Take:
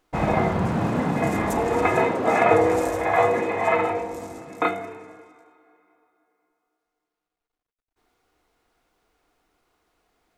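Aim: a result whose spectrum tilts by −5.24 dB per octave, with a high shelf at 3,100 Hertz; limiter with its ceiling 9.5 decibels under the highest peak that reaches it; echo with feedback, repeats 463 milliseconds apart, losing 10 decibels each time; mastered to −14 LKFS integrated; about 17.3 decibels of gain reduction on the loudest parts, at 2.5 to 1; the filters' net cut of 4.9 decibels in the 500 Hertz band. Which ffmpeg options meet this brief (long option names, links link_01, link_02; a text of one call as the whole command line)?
ffmpeg -i in.wav -af "equalizer=frequency=500:width_type=o:gain=-6.5,highshelf=frequency=3100:gain=5,acompressor=threshold=-44dB:ratio=2.5,alimiter=level_in=9dB:limit=-24dB:level=0:latency=1,volume=-9dB,aecho=1:1:463|926|1389|1852:0.316|0.101|0.0324|0.0104,volume=28.5dB" out.wav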